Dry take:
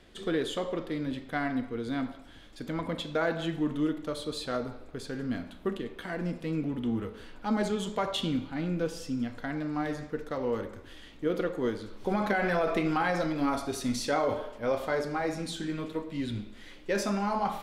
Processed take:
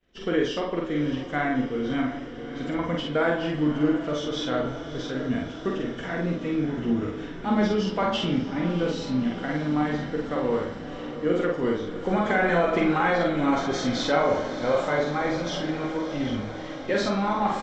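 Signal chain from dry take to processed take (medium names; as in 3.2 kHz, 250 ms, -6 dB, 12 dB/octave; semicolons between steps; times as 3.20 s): knee-point frequency compression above 2.4 kHz 1.5:1; expander -46 dBFS; doubling 47 ms -2 dB; de-hum 54.58 Hz, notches 35; on a send: echo that smears into a reverb 639 ms, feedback 71%, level -12 dB; on the sum: trim +4 dB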